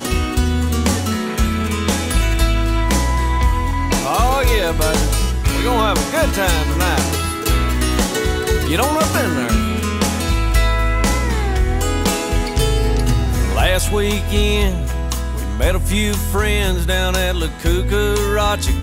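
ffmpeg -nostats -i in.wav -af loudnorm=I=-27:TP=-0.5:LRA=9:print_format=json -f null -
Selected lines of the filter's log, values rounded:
"input_i" : "-17.8",
"input_tp" : "-3.7",
"input_lra" : "1.1",
"input_thresh" : "-27.8",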